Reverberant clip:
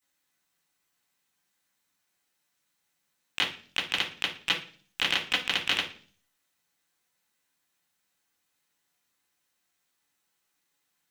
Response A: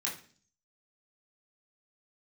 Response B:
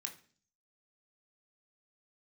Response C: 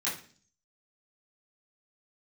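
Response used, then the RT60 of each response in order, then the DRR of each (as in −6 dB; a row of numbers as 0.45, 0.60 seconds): C; 0.45, 0.45, 0.45 seconds; −5.5, 2.5, −10.5 decibels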